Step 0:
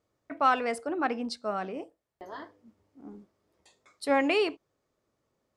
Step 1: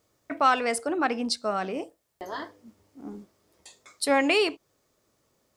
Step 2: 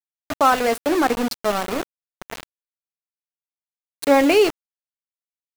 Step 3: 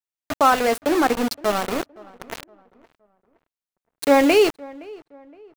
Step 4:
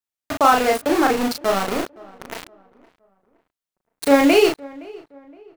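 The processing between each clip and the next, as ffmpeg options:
ffmpeg -i in.wav -filter_complex "[0:a]highshelf=frequency=3800:gain=10.5,asplit=2[link_01][link_02];[link_02]acompressor=threshold=-34dB:ratio=6,volume=0dB[link_03];[link_01][link_03]amix=inputs=2:normalize=0" out.wav
ffmpeg -i in.wav -af "equalizer=frequency=380:width_type=o:width=3:gain=9.5,aeval=exprs='val(0)*gte(abs(val(0)),0.0891)':channel_layout=same" out.wav
ffmpeg -i in.wav -filter_complex "[0:a]asplit=2[link_01][link_02];[link_02]adelay=517,lowpass=frequency=1700:poles=1,volume=-22dB,asplit=2[link_03][link_04];[link_04]adelay=517,lowpass=frequency=1700:poles=1,volume=0.39,asplit=2[link_05][link_06];[link_06]adelay=517,lowpass=frequency=1700:poles=1,volume=0.39[link_07];[link_01][link_03][link_05][link_07]amix=inputs=4:normalize=0" out.wav
ffmpeg -i in.wav -filter_complex "[0:a]asplit=2[link_01][link_02];[link_02]adelay=36,volume=-3dB[link_03];[link_01][link_03]amix=inputs=2:normalize=0" out.wav

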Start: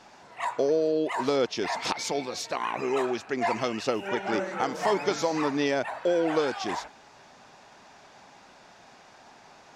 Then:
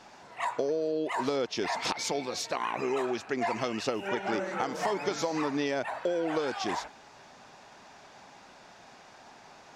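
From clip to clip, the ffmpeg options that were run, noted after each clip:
ffmpeg -i in.wav -af "acompressor=threshold=-26dB:ratio=6" out.wav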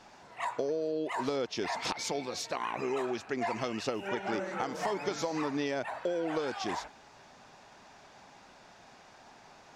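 ffmpeg -i in.wav -af "lowshelf=frequency=100:gain=5.5,volume=-3dB" out.wav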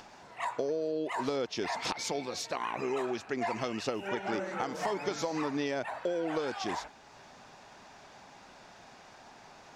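ffmpeg -i in.wav -af "acompressor=mode=upward:threshold=-48dB:ratio=2.5" out.wav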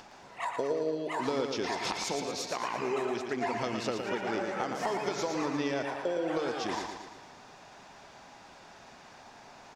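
ffmpeg -i in.wav -af "aecho=1:1:114|228|342|456|570|684|798:0.501|0.276|0.152|0.0834|0.0459|0.0252|0.0139" out.wav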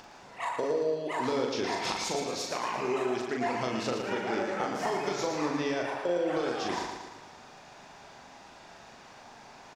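ffmpeg -i in.wav -filter_complex "[0:a]asplit=2[link_01][link_02];[link_02]adelay=40,volume=-4dB[link_03];[link_01][link_03]amix=inputs=2:normalize=0" out.wav

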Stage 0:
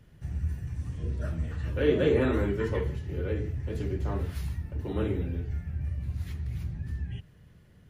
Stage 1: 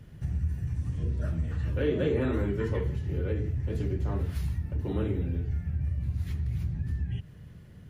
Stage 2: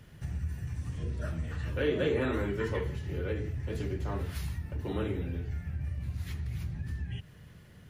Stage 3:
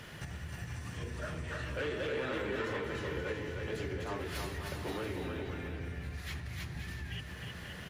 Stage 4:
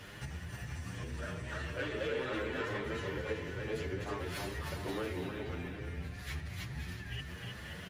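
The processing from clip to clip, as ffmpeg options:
ffmpeg -i in.wav -af "equalizer=frequency=120:width=0.5:gain=5,acompressor=threshold=-34dB:ratio=2,volume=3.5dB" out.wav
ffmpeg -i in.wav -af "lowshelf=frequency=480:gain=-9.5,volume=4dB" out.wav
ffmpeg -i in.wav -filter_complex "[0:a]acompressor=threshold=-41dB:ratio=6,asplit=2[link_01][link_02];[link_02]highpass=frequency=720:poles=1,volume=16dB,asoftclip=type=tanh:threshold=-31dB[link_03];[link_01][link_03]amix=inputs=2:normalize=0,lowpass=frequency=5900:poles=1,volume=-6dB,aecho=1:1:310|527|678.9|785.2|859.7:0.631|0.398|0.251|0.158|0.1,volume=3dB" out.wav
ffmpeg -i in.wav -filter_complex "[0:a]asplit=2[link_01][link_02];[link_02]adelay=8.3,afreqshift=2.3[link_03];[link_01][link_03]amix=inputs=2:normalize=1,volume=2.5dB" out.wav

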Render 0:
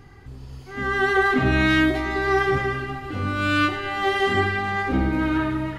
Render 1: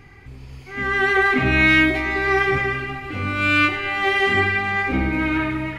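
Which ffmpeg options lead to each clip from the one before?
ffmpeg -i in.wav -af "equalizer=frequency=2300:width_type=o:width=0.42:gain=13.5" out.wav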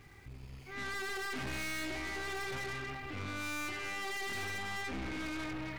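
ffmpeg -i in.wav -af "aeval=exprs='(tanh(31.6*val(0)+0.5)-tanh(0.5))/31.6':channel_layout=same,aeval=exprs='val(0)*gte(abs(val(0)),0.00251)':channel_layout=same,volume=-8dB" out.wav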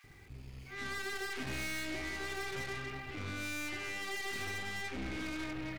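ffmpeg -i in.wav -filter_complex "[0:a]acrossover=split=1000[link_01][link_02];[link_01]adelay=40[link_03];[link_03][link_02]amix=inputs=2:normalize=0" out.wav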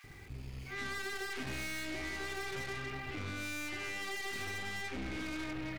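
ffmpeg -i in.wav -af "acompressor=threshold=-43dB:ratio=2.5,volume=4.5dB" out.wav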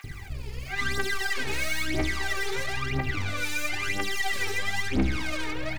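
ffmpeg -i in.wav -af "aphaser=in_gain=1:out_gain=1:delay=2.4:decay=0.75:speed=1:type=triangular,volume=7dB" out.wav

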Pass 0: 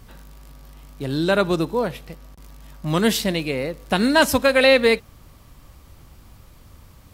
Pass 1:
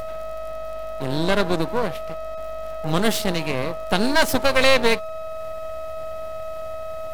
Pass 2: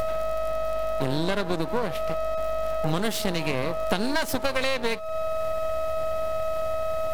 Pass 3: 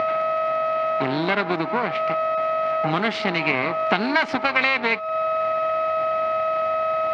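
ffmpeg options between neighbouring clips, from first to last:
ffmpeg -i in.wav -af "acompressor=mode=upward:threshold=-37dB:ratio=2.5,aeval=exprs='val(0)+0.0501*sin(2*PI*640*n/s)':channel_layout=same,aeval=exprs='max(val(0),0)':channel_layout=same,volume=2dB" out.wav
ffmpeg -i in.wav -af "acompressor=threshold=-24dB:ratio=12,volume=4.5dB" out.wav
ffmpeg -i in.wav -af "highpass=200,equalizer=frequency=520:width_type=q:width=4:gain=-9,equalizer=frequency=780:width_type=q:width=4:gain=4,equalizer=frequency=1300:width_type=q:width=4:gain=5,equalizer=frequency=2200:width_type=q:width=4:gain=9,equalizer=frequency=3600:width_type=q:width=4:gain=-4,lowpass=frequency=4100:width=0.5412,lowpass=frequency=4100:width=1.3066,volume=5dB" out.wav

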